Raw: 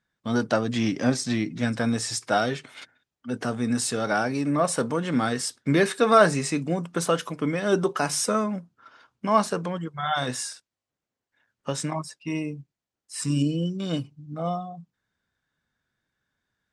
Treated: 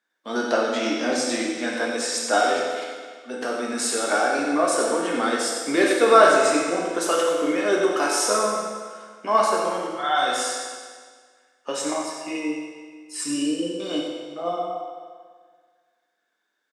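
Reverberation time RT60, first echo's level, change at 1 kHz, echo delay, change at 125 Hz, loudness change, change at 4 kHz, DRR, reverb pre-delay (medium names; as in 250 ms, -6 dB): 1.7 s, -8.0 dB, +5.0 dB, 94 ms, -18.0 dB, +3.0 dB, +4.5 dB, -3.0 dB, 9 ms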